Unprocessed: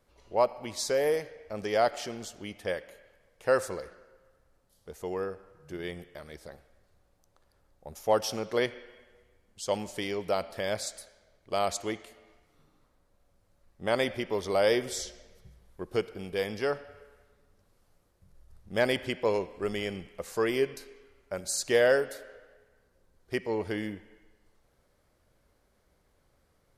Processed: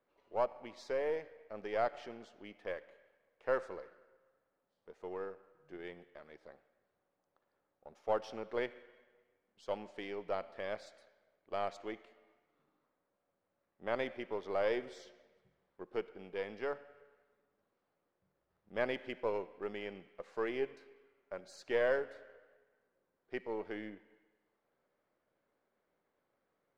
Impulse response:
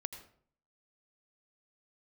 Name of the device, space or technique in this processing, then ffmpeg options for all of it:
crystal radio: -af "highpass=240,lowpass=2.5k,aeval=exprs='if(lt(val(0),0),0.708*val(0),val(0))':c=same,volume=-7dB"

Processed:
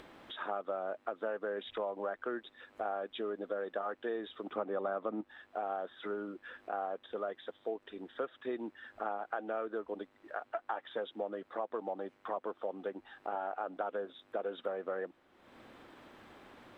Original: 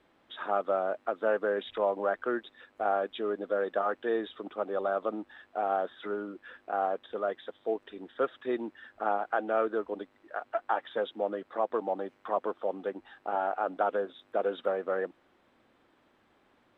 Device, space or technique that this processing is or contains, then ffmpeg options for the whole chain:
upward and downward compression: -filter_complex "[0:a]asettb=1/sr,asplit=3[a][b][c];[a]atrim=end=4.524[d];[b]atrim=start=4.52:end=5.21,asetpts=PTS-STARTPTS,afade=t=in:d=0.004:c=qsin,afade=t=out:st=0.686:d=0.004:c=qsin,equalizer=f=125:t=o:w=1:g=11,equalizer=f=250:t=o:w=1:g=8,equalizer=f=500:t=o:w=1:g=4,equalizer=f=1k:t=o:w=1:g=6,equalizer=f=2k:t=o:w=1:g=7[e];[c]atrim=start=5.206[f];[d][e]acrossfade=d=0.004:c1=hsin:c2=qsin[g];[g][f]acrossfade=d=0.004:c1=qsin:c2=hsin,acompressor=mode=upward:threshold=-41dB:ratio=2.5,acompressor=threshold=-32dB:ratio=4,volume=-2dB"

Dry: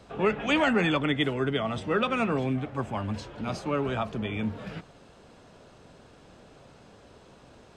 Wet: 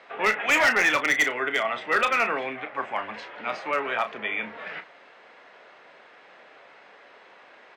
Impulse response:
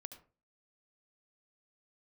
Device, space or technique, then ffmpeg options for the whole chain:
megaphone: -filter_complex "[0:a]highpass=640,lowpass=3.1k,equalizer=f=2k:t=o:w=0.55:g=10.5,asoftclip=type=hard:threshold=-20.5dB,asplit=2[a][b];[b]adelay=33,volume=-10dB[c];[a][c]amix=inputs=2:normalize=0,volume=5dB"

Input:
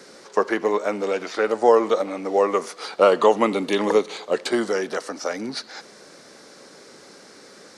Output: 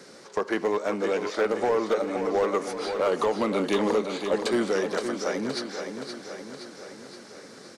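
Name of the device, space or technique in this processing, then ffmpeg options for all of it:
limiter into clipper: -af "equalizer=f=120:t=o:w=1.7:g=5.5,alimiter=limit=-10.5dB:level=0:latency=1:release=197,asoftclip=type=hard:threshold=-15dB,aecho=1:1:520|1040|1560|2080|2600|3120|3640:0.422|0.245|0.142|0.0823|0.0477|0.0277|0.0161,volume=-3dB"

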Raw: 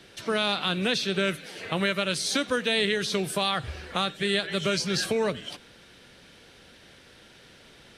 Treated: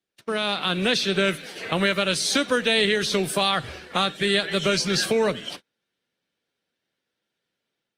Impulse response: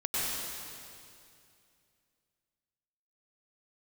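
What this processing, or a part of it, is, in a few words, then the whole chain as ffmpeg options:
video call: -af "highpass=140,dynaudnorm=f=390:g=3:m=4.5dB,agate=range=-33dB:threshold=-37dB:ratio=16:detection=peak" -ar 48000 -c:a libopus -b:a 32k

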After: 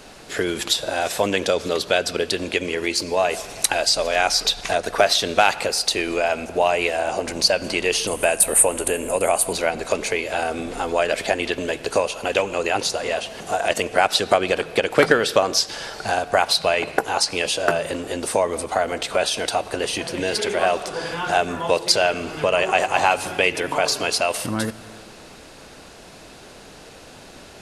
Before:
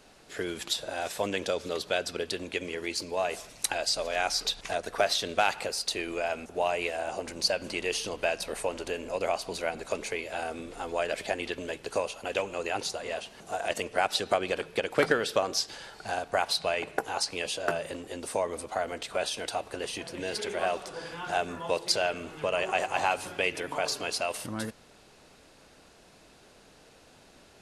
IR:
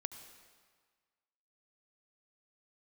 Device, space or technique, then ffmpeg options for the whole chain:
compressed reverb return: -filter_complex "[0:a]asplit=2[a][b];[1:a]atrim=start_sample=2205[c];[b][c]afir=irnorm=-1:irlink=0,acompressor=threshold=-41dB:ratio=6,volume=1dB[d];[a][d]amix=inputs=2:normalize=0,asettb=1/sr,asplit=3[e][f][g];[e]atrim=end=8.074[h];[f]atrim=start=8.07:end=9.53,asetpts=PTS-STARTPTS,afade=t=in:d=0.004:c=qsin,afade=t=out:st=1.456:d=0.004:c=qsin,highshelf=f=7k:t=q:w=3:g=11.5[i];[g]atrim=start=9.526[j];[h][i]acrossfade=d=0.004:c1=hsin:c2=qsin[k];[k][j]acrossfade=d=0.004:c1=qsin:c2=hsin,volume=8dB"

